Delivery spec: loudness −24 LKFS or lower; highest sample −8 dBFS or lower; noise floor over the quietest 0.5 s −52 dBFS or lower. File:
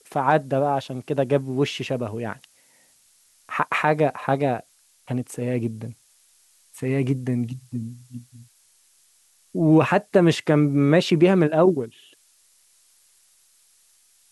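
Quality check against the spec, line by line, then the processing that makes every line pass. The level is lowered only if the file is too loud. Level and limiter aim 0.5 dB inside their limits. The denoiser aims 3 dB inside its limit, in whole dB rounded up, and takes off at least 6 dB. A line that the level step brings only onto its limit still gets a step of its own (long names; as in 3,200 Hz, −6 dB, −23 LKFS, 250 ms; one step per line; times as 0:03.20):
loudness −22.0 LKFS: out of spec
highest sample −5.5 dBFS: out of spec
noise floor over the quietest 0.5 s −60 dBFS: in spec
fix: level −2.5 dB
brickwall limiter −8.5 dBFS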